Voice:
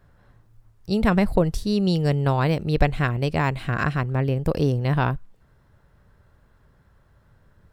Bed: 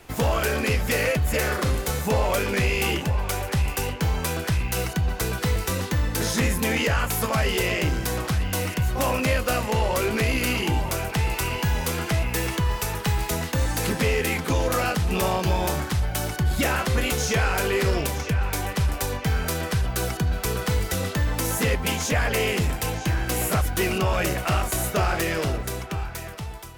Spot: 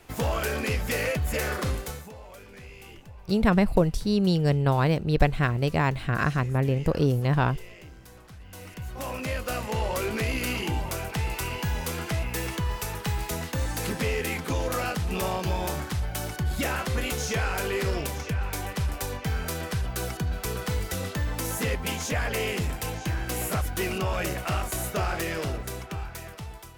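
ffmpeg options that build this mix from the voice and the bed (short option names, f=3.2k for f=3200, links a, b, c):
-filter_complex "[0:a]adelay=2400,volume=-1.5dB[a];[1:a]volume=13.5dB,afade=t=out:st=1.69:d=0.43:silence=0.11885,afade=t=in:st=8.39:d=1.46:silence=0.125893[b];[a][b]amix=inputs=2:normalize=0"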